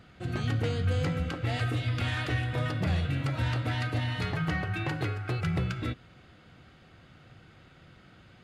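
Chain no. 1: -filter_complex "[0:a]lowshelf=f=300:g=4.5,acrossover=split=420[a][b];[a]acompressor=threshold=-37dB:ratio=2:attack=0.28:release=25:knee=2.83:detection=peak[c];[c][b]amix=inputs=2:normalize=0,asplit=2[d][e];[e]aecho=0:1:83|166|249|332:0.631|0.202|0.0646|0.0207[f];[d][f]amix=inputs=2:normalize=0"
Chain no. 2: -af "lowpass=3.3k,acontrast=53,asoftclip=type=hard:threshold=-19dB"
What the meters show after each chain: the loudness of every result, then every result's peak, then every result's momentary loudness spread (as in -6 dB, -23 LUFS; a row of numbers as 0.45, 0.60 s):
-31.0, -25.5 LUFS; -18.5, -19.0 dBFS; 8, 3 LU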